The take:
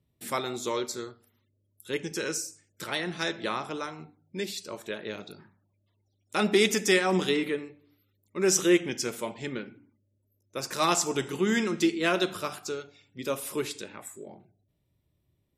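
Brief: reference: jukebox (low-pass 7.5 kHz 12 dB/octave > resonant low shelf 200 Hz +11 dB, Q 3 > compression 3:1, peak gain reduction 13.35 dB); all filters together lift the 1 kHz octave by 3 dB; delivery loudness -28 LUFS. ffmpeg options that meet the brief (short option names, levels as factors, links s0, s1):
-af "lowpass=7500,lowshelf=f=200:t=q:w=3:g=11,equalizer=f=1000:t=o:g=4.5,acompressor=threshold=0.02:ratio=3,volume=2.66"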